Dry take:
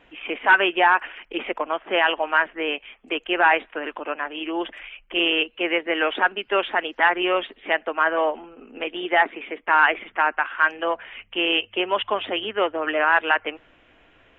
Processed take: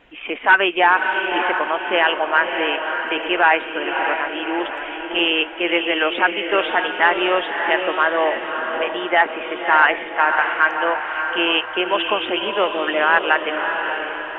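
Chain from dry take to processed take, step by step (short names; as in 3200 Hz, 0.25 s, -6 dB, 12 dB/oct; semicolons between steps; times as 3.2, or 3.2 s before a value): diffused feedback echo 0.599 s, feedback 49%, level -5.5 dB; gain +2.5 dB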